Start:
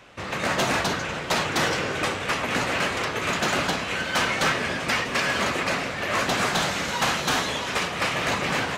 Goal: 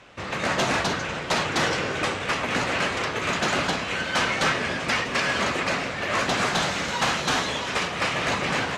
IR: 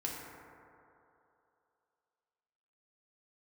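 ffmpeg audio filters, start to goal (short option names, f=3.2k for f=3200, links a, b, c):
-af "lowpass=8.7k"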